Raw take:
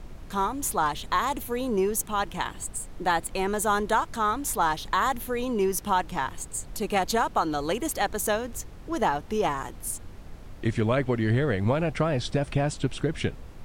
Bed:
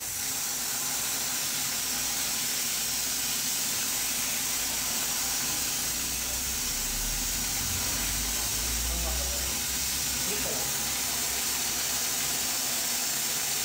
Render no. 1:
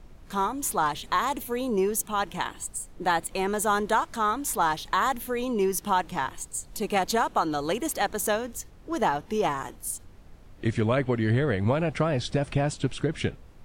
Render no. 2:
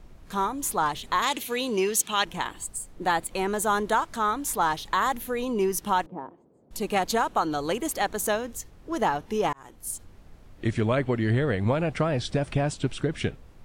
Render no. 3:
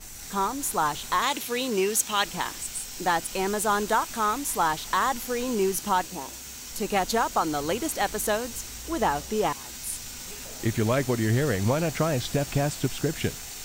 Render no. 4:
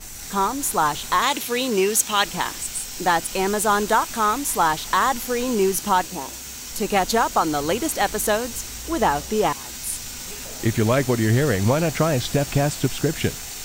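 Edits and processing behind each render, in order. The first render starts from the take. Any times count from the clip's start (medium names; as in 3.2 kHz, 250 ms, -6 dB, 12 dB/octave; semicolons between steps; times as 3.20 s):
noise print and reduce 7 dB
1.22–2.25 s: frequency weighting D; 6.06–6.71 s: Butterworth band-pass 360 Hz, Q 0.79; 9.53–9.94 s: fade in
add bed -10 dB
trim +5 dB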